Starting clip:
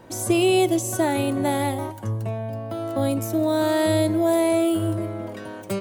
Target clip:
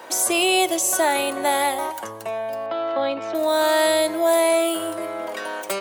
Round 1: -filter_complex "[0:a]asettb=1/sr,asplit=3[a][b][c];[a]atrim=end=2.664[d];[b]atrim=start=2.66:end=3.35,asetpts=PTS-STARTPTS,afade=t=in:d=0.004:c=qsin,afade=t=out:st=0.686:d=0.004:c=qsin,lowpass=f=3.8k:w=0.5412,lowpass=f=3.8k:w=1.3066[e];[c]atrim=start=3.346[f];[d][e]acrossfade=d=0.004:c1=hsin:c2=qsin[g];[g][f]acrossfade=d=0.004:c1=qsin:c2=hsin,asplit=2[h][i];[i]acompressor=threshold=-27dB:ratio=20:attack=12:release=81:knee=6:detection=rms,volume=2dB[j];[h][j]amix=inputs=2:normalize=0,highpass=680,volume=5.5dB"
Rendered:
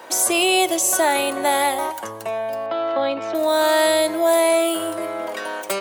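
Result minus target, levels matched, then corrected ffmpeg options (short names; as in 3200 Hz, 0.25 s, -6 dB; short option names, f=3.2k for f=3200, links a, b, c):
compressor: peak gain reduction -6.5 dB
-filter_complex "[0:a]asettb=1/sr,asplit=3[a][b][c];[a]atrim=end=2.664[d];[b]atrim=start=2.66:end=3.35,asetpts=PTS-STARTPTS,afade=t=in:d=0.004:c=qsin,afade=t=out:st=0.686:d=0.004:c=qsin,lowpass=f=3.8k:w=0.5412,lowpass=f=3.8k:w=1.3066[e];[c]atrim=start=3.346[f];[d][e]acrossfade=d=0.004:c1=hsin:c2=qsin[g];[g][f]acrossfade=d=0.004:c1=qsin:c2=hsin,asplit=2[h][i];[i]acompressor=threshold=-34dB:ratio=20:attack=12:release=81:knee=6:detection=rms,volume=2dB[j];[h][j]amix=inputs=2:normalize=0,highpass=680,volume=5.5dB"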